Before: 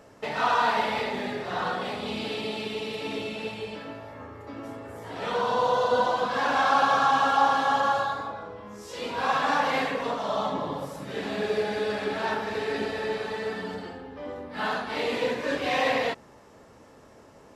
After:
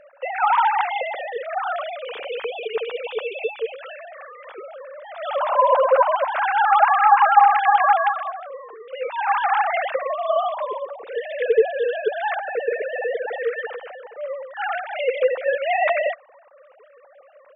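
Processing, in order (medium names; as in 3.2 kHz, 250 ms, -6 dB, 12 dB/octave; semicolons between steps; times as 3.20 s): formants replaced by sine waves; 3.83–4.52 s: tilt shelf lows -9 dB, about 740 Hz; trim +6 dB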